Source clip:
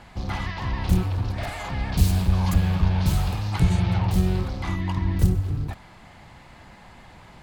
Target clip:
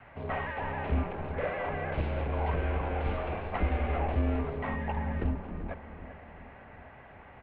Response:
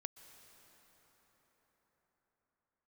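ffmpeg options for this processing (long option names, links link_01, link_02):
-filter_complex "[0:a]highpass=frequency=170:width_type=q:width=0.5412,highpass=frequency=170:width_type=q:width=1.307,lowpass=frequency=2700:width_type=q:width=0.5176,lowpass=frequency=2700:width_type=q:width=0.7071,lowpass=frequency=2700:width_type=q:width=1.932,afreqshift=-110,adynamicequalizer=threshold=0.00282:dfrequency=460:dqfactor=1.6:tfrequency=460:tqfactor=1.6:attack=5:release=100:ratio=0.375:range=3.5:mode=boostabove:tftype=bell,asplit=2[link_01][link_02];[link_02]adelay=384,lowpass=frequency=1900:poles=1,volume=-12dB,asplit=2[link_03][link_04];[link_04]adelay=384,lowpass=frequency=1900:poles=1,volume=0.55,asplit=2[link_05][link_06];[link_06]adelay=384,lowpass=frequency=1900:poles=1,volume=0.55,asplit=2[link_07][link_08];[link_08]adelay=384,lowpass=frequency=1900:poles=1,volume=0.55,asplit=2[link_09][link_10];[link_10]adelay=384,lowpass=frequency=1900:poles=1,volume=0.55,asplit=2[link_11][link_12];[link_12]adelay=384,lowpass=frequency=1900:poles=1,volume=0.55[link_13];[link_01][link_03][link_05][link_07][link_09][link_11][link_13]amix=inputs=7:normalize=0,volume=-2dB"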